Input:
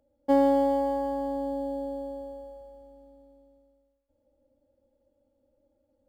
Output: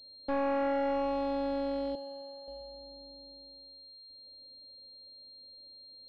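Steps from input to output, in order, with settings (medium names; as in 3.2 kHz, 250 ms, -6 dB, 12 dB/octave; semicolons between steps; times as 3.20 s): 1.95–2.48 s: high-pass 1 kHz 6 dB/octave; overload inside the chain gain 28.5 dB; class-D stage that switches slowly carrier 4.2 kHz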